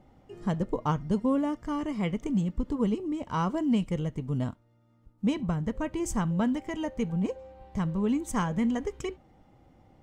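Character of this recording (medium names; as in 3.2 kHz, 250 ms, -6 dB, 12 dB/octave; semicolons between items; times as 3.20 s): noise floor -64 dBFS; spectral tilt -6.5 dB/octave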